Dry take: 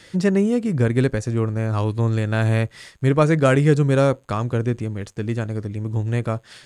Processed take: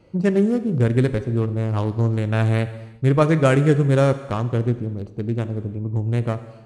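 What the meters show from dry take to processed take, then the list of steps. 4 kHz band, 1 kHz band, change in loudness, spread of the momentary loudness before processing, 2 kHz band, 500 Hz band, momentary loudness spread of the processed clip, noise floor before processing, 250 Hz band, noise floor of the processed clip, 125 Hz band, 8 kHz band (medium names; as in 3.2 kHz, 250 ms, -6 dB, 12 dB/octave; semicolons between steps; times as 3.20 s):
-1.5 dB, -0.5 dB, 0.0 dB, 11 LU, -2.0 dB, 0.0 dB, 10 LU, -51 dBFS, 0.0 dB, -43 dBFS, +0.5 dB, no reading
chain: local Wiener filter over 25 samples; gated-style reverb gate 400 ms falling, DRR 10.5 dB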